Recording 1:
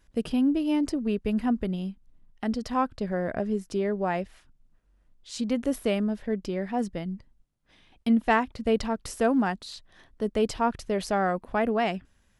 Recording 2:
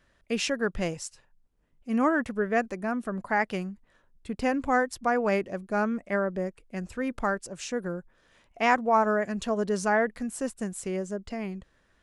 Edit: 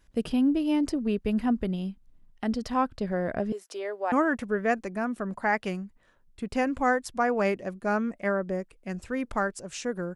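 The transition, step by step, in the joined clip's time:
recording 1
0:03.52–0:04.12: high-pass filter 470 Hz 24 dB per octave
0:04.12: continue with recording 2 from 0:01.99

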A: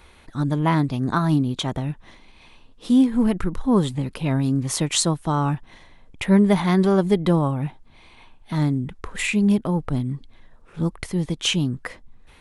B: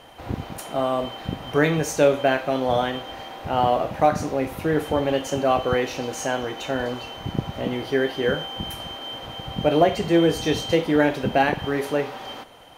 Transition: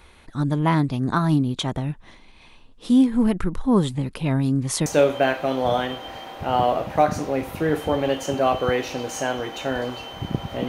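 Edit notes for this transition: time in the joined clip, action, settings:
A
0:04.86: continue with B from 0:01.90

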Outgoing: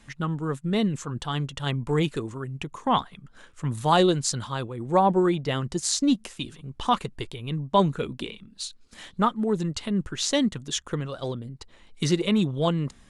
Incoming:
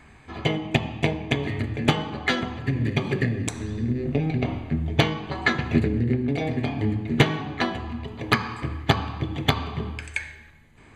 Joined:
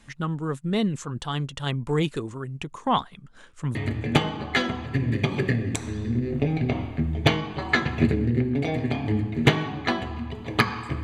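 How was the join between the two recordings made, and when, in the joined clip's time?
outgoing
0:02.20–0:03.75: bad sample-rate conversion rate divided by 2×, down none, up filtered
0:03.75: continue with incoming from 0:01.48

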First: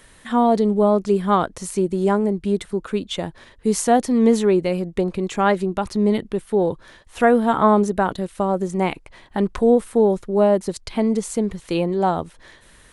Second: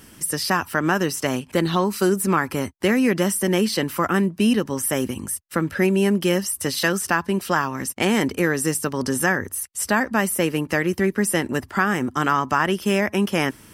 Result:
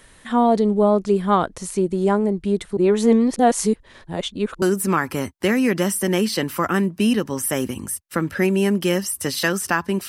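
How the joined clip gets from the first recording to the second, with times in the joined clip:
first
0:02.77–0:04.62: reverse
0:04.62: continue with second from 0:02.02

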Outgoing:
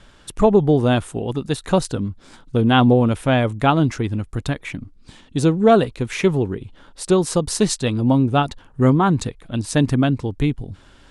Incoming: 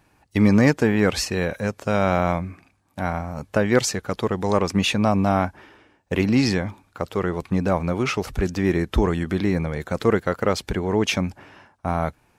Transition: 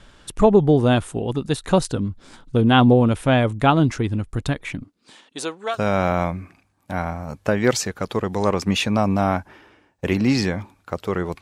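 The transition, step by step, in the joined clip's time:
outgoing
0:04.82–0:05.79: high-pass filter 200 Hz → 1,400 Hz
0:05.74: continue with incoming from 0:01.82, crossfade 0.10 s

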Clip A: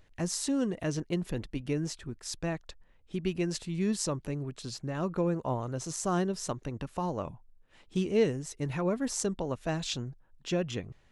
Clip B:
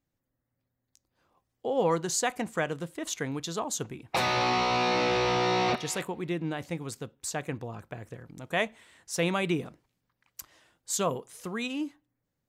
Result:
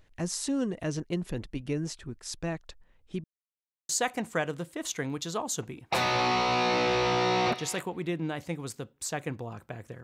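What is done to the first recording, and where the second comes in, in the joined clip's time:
clip A
0:03.24–0:03.89: silence
0:03.89: continue with clip B from 0:02.11

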